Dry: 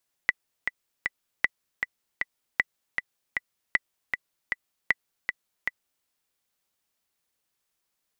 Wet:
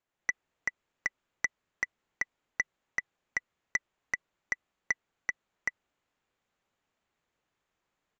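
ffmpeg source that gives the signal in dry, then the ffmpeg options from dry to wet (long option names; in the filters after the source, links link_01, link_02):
-f lavfi -i "aevalsrc='pow(10,(-7-6*gte(mod(t,3*60/156),60/156))/20)*sin(2*PI*1980*mod(t,60/156))*exp(-6.91*mod(t,60/156)/0.03)':duration=5.76:sample_rate=44100"
-af "equalizer=frequency=5300:width=0.92:gain=-15,dynaudnorm=framelen=130:gausssize=3:maxgain=6dB,aresample=16000,asoftclip=type=tanh:threshold=-19.5dB,aresample=44100"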